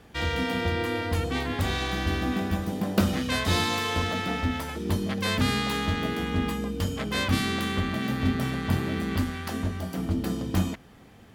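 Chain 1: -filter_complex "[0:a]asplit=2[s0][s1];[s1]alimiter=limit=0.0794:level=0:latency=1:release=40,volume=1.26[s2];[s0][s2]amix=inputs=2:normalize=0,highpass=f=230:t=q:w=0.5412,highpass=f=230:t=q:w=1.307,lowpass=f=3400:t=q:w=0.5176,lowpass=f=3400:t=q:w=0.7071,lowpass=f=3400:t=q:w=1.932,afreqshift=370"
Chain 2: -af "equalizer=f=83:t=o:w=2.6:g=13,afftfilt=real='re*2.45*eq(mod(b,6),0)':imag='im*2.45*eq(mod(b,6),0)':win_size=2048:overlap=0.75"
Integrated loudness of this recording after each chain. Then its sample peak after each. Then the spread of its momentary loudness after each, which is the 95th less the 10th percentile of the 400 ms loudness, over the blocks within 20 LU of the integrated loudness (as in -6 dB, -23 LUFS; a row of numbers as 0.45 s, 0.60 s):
-25.0 LUFS, -23.5 LUFS; -7.5 dBFS, -5.0 dBFS; 5 LU, 11 LU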